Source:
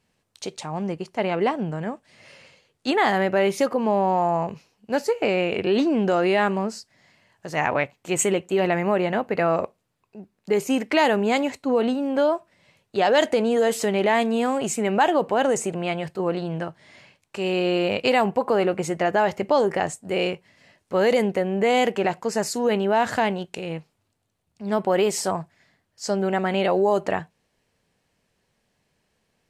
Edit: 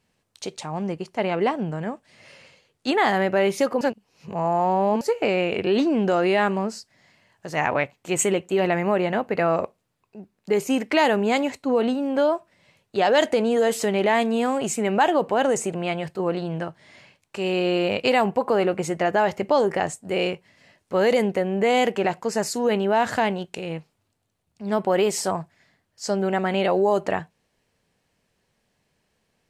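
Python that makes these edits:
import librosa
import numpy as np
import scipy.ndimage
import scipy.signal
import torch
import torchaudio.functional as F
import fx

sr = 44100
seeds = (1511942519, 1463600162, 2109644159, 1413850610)

y = fx.edit(x, sr, fx.reverse_span(start_s=3.81, length_s=1.2), tone=tone)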